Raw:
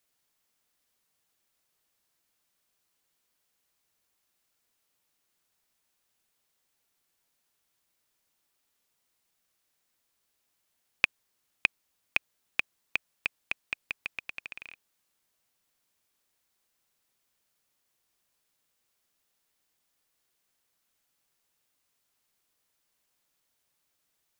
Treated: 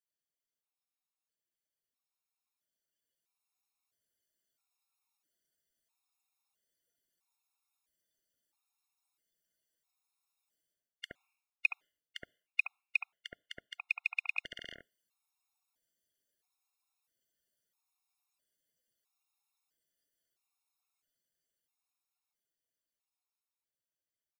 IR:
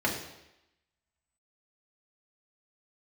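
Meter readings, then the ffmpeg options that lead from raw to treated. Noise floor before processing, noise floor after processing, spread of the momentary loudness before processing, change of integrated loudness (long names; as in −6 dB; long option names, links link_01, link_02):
−78 dBFS, below −85 dBFS, 13 LU, −3.0 dB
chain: -filter_complex "[0:a]areverse,acompressor=threshold=-38dB:ratio=6,areverse,afftdn=noise_reduction=17:noise_floor=-75,dynaudnorm=framelen=490:gausssize=13:maxgain=11dB,lowshelf=frequency=210:gain=-3.5,acrossover=split=1700[link_01][link_02];[link_01]adelay=70[link_03];[link_03][link_02]amix=inputs=2:normalize=0,afftfilt=real='re*gt(sin(2*PI*0.76*pts/sr)*(1-2*mod(floor(b*sr/1024/710),2)),0)':imag='im*gt(sin(2*PI*0.76*pts/sr)*(1-2*mod(floor(b*sr/1024/710),2)),0)':win_size=1024:overlap=0.75"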